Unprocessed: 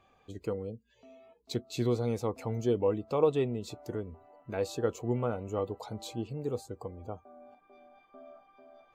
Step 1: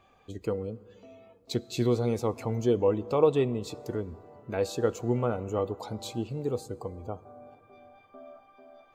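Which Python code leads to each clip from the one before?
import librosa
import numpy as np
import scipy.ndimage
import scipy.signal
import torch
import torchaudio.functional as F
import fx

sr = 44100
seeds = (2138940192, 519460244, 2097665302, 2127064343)

y = fx.rev_plate(x, sr, seeds[0], rt60_s=3.2, hf_ratio=0.5, predelay_ms=0, drr_db=18.5)
y = y * librosa.db_to_amplitude(3.5)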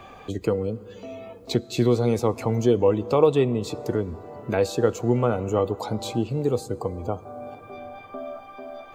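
y = fx.band_squash(x, sr, depth_pct=40)
y = y * librosa.db_to_amplitude(6.5)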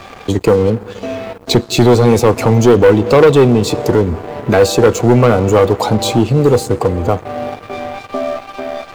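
y = fx.leveller(x, sr, passes=3)
y = y * librosa.db_to_amplitude(4.5)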